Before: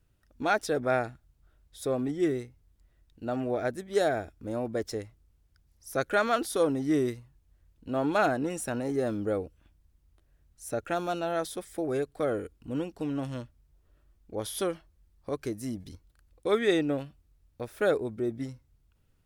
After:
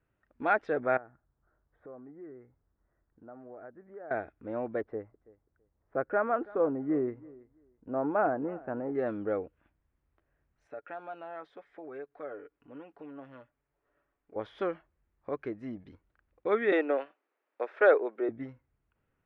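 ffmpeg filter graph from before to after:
-filter_complex "[0:a]asettb=1/sr,asplit=3[s0][s1][s2];[s0]atrim=end=0.974[s3];[s1]atrim=start=0.97:end=4.11,asetpts=PTS-STARTPTS,afade=t=in:d=0.004:c=qsin,afade=t=out:st=3.136:d=0.004:c=qsin,lowpass=f=1600:w=0.5412,lowpass=f=1600:w=1.3066,acompressor=threshold=0.00316:ratio=2.5:attack=3.2:release=140:knee=1:detection=peak[s4];[s2]atrim=start=4.106[s5];[s3][s4]acrossfade=d=0.004:c1=hsin:c2=qsin[s6];[s6][s5]acrossfade=d=0.004:c1=qsin:c2=hsin,asettb=1/sr,asplit=3[s7][s8][s9];[s7]atrim=end=4.814[s10];[s8]atrim=start=4.81:end=8.95,asetpts=PTS-STARTPTS,afade=t=in:d=0.004:c=qsin,afade=t=out:st=4.136:d=0.004:c=qsin,lowpass=1100,aecho=1:1:330|660:0.0841|0.0143,atrim=end_sample=182574[s11];[s9]atrim=start=8.946[s12];[s10][s11]acrossfade=d=0.004:c1=hsin:c2=qsin[s13];[s13][s12]acrossfade=d=0.004:c1=qsin:c2=hsin,asettb=1/sr,asplit=3[s14][s15][s16];[s14]atrim=end=10.674[s17];[s15]atrim=start=10.67:end=14.36,asetpts=PTS-STARTPTS,afade=t=in:d=0.004:c=qsin,afade=t=out:st=3.686:d=0.004:c=qsin,bass=f=250:g=-10,treble=f=4000:g=-2,aecho=1:1:7:0.42,atrim=end_sample=162729,acompressor=threshold=0.00158:ratio=1.5:attack=3.2:release=140:knee=1:detection=peak[s18];[s16]atrim=start=14.356[s19];[s17][s18]acrossfade=d=0.004:c1=hsin:c2=qsin[s20];[s20][s19]acrossfade=d=0.004:c1=qsin:c2=hsin,asettb=1/sr,asplit=3[s21][s22][s23];[s21]atrim=end=16.724[s24];[s22]atrim=start=16.72:end=18.29,asetpts=PTS-STARTPTS,afade=t=in:d=0.004:c=qsin,afade=t=out:st=1.566:d=0.004:c=qsin,acontrast=55,highpass=f=380:w=0.5412,highpass=f=380:w=1.3066[s25];[s23]atrim=start=18.286[s26];[s24][s25]acrossfade=d=0.004:c1=hsin:c2=qsin[s27];[s27][s26]acrossfade=d=0.004:c1=qsin:c2=hsin,lowpass=f=2100:w=0.5412,lowpass=f=2100:w=1.3066,aemphasis=mode=production:type=bsi"

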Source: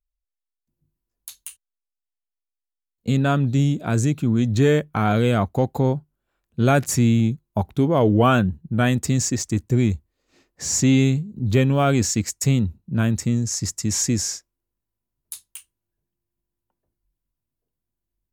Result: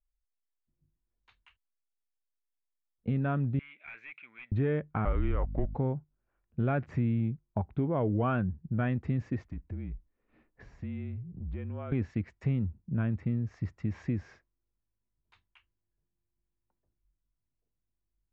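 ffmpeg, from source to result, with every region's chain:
-filter_complex "[0:a]asettb=1/sr,asplit=3[s0][s1][s2];[s0]atrim=end=3.594[s3];[s1]atrim=start=3.59:end=4.52,asetpts=PTS-STARTPTS,afade=t=in:d=0.004:c=qsin,afade=t=out:st=0.926:d=0.004:c=qsin,highpass=f=2300:t=q:w=6.5,aemphasis=mode=reproduction:type=75kf,asoftclip=type=hard:threshold=0.0282[s4];[s2]atrim=start=4.516[s5];[s3][s4]acrossfade=d=0.004:c1=hsin:c2=qsin[s6];[s6][s5]acrossfade=d=0.004:c1=qsin:c2=hsin,asettb=1/sr,asplit=3[s7][s8][s9];[s7]atrim=end=5.054[s10];[s8]atrim=start=5.05:end=5.75,asetpts=PTS-STARTPTS,afade=t=in:d=0.004:c=qsin,afade=t=out:st=0.696:d=0.004:c=qsin,adynamicsmooth=sensitivity=8:basefreq=3100,afreqshift=-150,aeval=exprs='val(0)+0.0316*(sin(2*PI*50*n/s)+sin(2*PI*2*50*n/s)/2+sin(2*PI*3*50*n/s)/3+sin(2*PI*4*50*n/s)/4+sin(2*PI*5*50*n/s)/5)':c=same[s11];[s9]atrim=start=5.746[s12];[s10][s11]acrossfade=d=0.004:c1=hsin:c2=qsin[s13];[s13][s12]acrossfade=d=0.004:c1=qsin:c2=hsin,asettb=1/sr,asplit=3[s14][s15][s16];[s14]atrim=end=9.494[s17];[s15]atrim=start=9.49:end=11.92,asetpts=PTS-STARTPTS,afade=t=in:d=0.004:c=qsin,afade=t=out:st=2.426:d=0.004:c=qsin,acompressor=threshold=0.0158:ratio=3:attack=3.2:release=140:knee=1:detection=peak,afreqshift=-37[s18];[s16]atrim=start=11.916[s19];[s17][s18]acrossfade=d=0.004:c1=hsin:c2=qsin[s20];[s20][s19]acrossfade=d=0.004:c1=qsin:c2=hsin,lowpass=f=2300:w=0.5412,lowpass=f=2300:w=1.3066,lowshelf=f=100:g=7.5,acompressor=threshold=0.0631:ratio=2,volume=0.473"

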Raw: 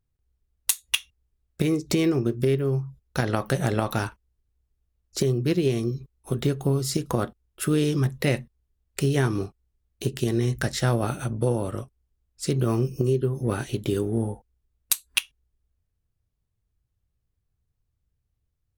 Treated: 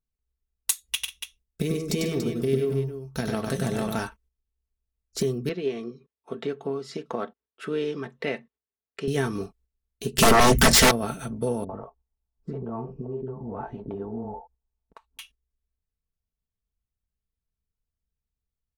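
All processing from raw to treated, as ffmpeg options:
-filter_complex "[0:a]asettb=1/sr,asplit=3[s0][s1][s2];[s0]atrim=end=0.874[s3];[s1]atrim=start=0.87:end=3.95,asetpts=PTS-STARTPTS,afade=t=in:d=0.004:c=qsin,afade=t=out:st=3.076:d=0.004:c=qsin,equalizer=f=1200:w=0.65:g=-6,aecho=1:1:97|143|286:0.631|0.2|0.376,atrim=end_sample=135828[s4];[s2]atrim=start=3.946[s5];[s3][s4]acrossfade=d=0.004:c1=hsin:c2=qsin[s6];[s6][s5]acrossfade=d=0.004:c1=qsin:c2=hsin,asettb=1/sr,asplit=3[s7][s8][s9];[s7]atrim=end=5.494[s10];[s8]atrim=start=5.49:end=9.08,asetpts=PTS-STARTPTS,afade=t=in:d=0.004:c=qsin,afade=t=out:st=3.586:d=0.004:c=qsin,highpass=140,lowpass=5700,bass=f=250:g=-11,treble=f=4000:g=-12[s11];[s9]atrim=start=9.076[s12];[s10][s11]acrossfade=d=0.004:c1=hsin:c2=qsin[s13];[s13][s12]acrossfade=d=0.004:c1=qsin:c2=hsin,asettb=1/sr,asplit=3[s14][s15][s16];[s14]atrim=end=10.184[s17];[s15]atrim=start=10.18:end=10.91,asetpts=PTS-STARTPTS,afade=t=in:d=0.004:c=qsin,afade=t=out:st=0.726:d=0.004:c=qsin,bandreject=f=3900:w=12,aeval=exprs='0.316*sin(PI/2*7.94*val(0)/0.316)':c=same[s18];[s16]atrim=start=10.906[s19];[s17][s18]acrossfade=d=0.004:c1=hsin:c2=qsin[s20];[s20][s19]acrossfade=d=0.004:c1=qsin:c2=hsin,asettb=1/sr,asplit=3[s21][s22][s23];[s21]atrim=end=11.644[s24];[s22]atrim=start=11.64:end=15.19,asetpts=PTS-STARTPTS,afade=t=in:d=0.004:c=qsin,afade=t=out:st=3.546:d=0.004:c=qsin,acompressor=threshold=0.0355:ratio=2:attack=3.2:release=140:knee=1:detection=peak,lowpass=f=870:t=q:w=3.5,acrossover=split=400[s25][s26];[s26]adelay=50[s27];[s25][s27]amix=inputs=2:normalize=0,atrim=end_sample=156555[s28];[s23]atrim=start=15.186[s29];[s24][s28]acrossfade=d=0.004:c1=hsin:c2=qsin[s30];[s30][s29]acrossfade=d=0.004:c1=qsin:c2=hsin,agate=range=0.398:threshold=0.002:ratio=16:detection=peak,aecho=1:1:4.5:0.56,volume=0.708"

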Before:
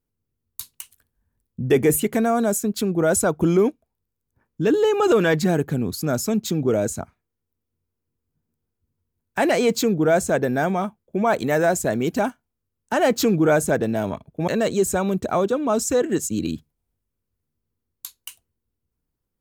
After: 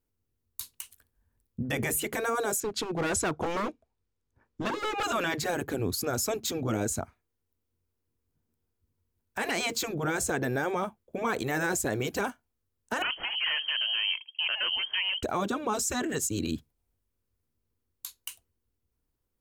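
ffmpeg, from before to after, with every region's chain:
-filter_complex "[0:a]asettb=1/sr,asplit=3[s0][s1][s2];[s0]atrim=end=2.604[s3];[s1]atrim=start=2.6:end=5.03,asetpts=PTS-STARTPTS,afade=t=in:d=0.004:c=qsin,afade=t=out:st=2.426:d=0.004:c=qsin,lowpass=6300,asoftclip=type=hard:threshold=0.119[s4];[s2]atrim=start=5.026[s5];[s3][s4]acrossfade=d=0.004:c1=hsin:c2=qsin[s6];[s6][s5]acrossfade=d=0.004:c1=qsin:c2=hsin,asettb=1/sr,asplit=3[s7][s8][s9];[s7]atrim=end=13.024[s10];[s8]atrim=start=13.02:end=15.23,asetpts=PTS-STARTPTS,afade=t=in:d=0.004:c=qsin,afade=t=out:st=2.206:d=0.004:c=qsin,asoftclip=type=hard:threshold=0.2,lowpass=f=2800:t=q:w=0.5098,lowpass=f=2800:t=q:w=0.6013,lowpass=f=2800:t=q:w=0.9,lowpass=f=2800:t=q:w=2.563,afreqshift=-3300[s11];[s9]atrim=start=15.226[s12];[s10][s11]acrossfade=d=0.004:c1=hsin:c2=qsin[s13];[s13][s12]acrossfade=d=0.004:c1=qsin:c2=hsin,afftfilt=real='re*lt(hypot(re,im),0.562)':imag='im*lt(hypot(re,im),0.562)':win_size=1024:overlap=0.75,equalizer=f=170:w=2:g=-6.5,alimiter=limit=0.1:level=0:latency=1:release=44"

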